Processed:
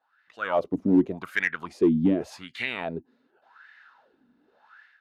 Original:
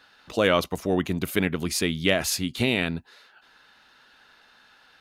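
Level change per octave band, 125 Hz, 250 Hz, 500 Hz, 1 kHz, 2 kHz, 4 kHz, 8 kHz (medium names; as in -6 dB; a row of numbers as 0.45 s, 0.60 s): -4.5 dB, +3.0 dB, -3.0 dB, -2.0 dB, -2.0 dB, -13.5 dB, under -20 dB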